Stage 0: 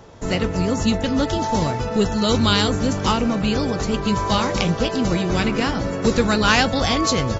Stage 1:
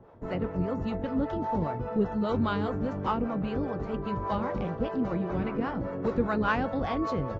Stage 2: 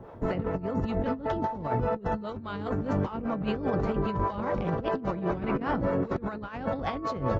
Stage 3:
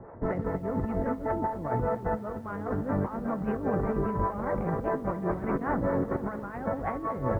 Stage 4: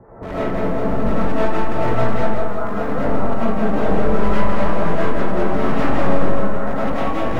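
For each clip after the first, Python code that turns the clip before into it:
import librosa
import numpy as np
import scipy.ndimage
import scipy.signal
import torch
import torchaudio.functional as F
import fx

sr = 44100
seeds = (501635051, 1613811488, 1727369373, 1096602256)

y1 = scipy.signal.sosfilt(scipy.signal.butter(2, 1300.0, 'lowpass', fs=sr, output='sos'), x)
y1 = fx.low_shelf(y1, sr, hz=120.0, db=-5.5)
y1 = fx.harmonic_tremolo(y1, sr, hz=5.0, depth_pct=70, crossover_hz=470.0)
y1 = y1 * 10.0 ** (-4.5 / 20.0)
y2 = fx.over_compress(y1, sr, threshold_db=-33.0, ratio=-0.5)
y2 = y2 * 10.0 ** (4.0 / 20.0)
y3 = scipy.signal.sosfilt(scipy.signal.ellip(4, 1.0, 70, 2000.0, 'lowpass', fs=sr, output='sos'), y2)
y3 = fx.echo_crushed(y3, sr, ms=231, feedback_pct=55, bits=9, wet_db=-13.0)
y4 = np.minimum(y3, 2.0 * 10.0 ** (-28.5 / 20.0) - y3)
y4 = fx.echo_feedback(y4, sr, ms=168, feedback_pct=53, wet_db=-6.5)
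y4 = fx.rev_freeverb(y4, sr, rt60_s=1.0, hf_ratio=0.45, predelay_ms=65, drr_db=-9.5)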